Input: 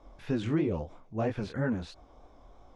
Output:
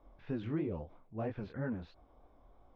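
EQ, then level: air absorption 260 m; -7.0 dB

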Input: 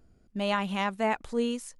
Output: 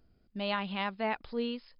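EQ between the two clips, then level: brick-wall FIR low-pass 5200 Hz; high shelf 3700 Hz +9 dB; -5.5 dB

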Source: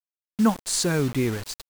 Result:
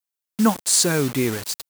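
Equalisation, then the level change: HPF 160 Hz 6 dB/oct; high shelf 6300 Hz +8 dB; +3.5 dB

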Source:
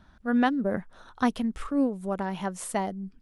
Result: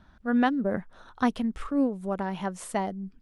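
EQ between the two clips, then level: high shelf 7100 Hz -7 dB; 0.0 dB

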